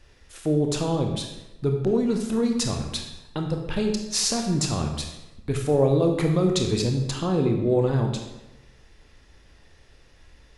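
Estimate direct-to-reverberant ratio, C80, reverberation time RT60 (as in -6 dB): 2.5 dB, 7.5 dB, 1.0 s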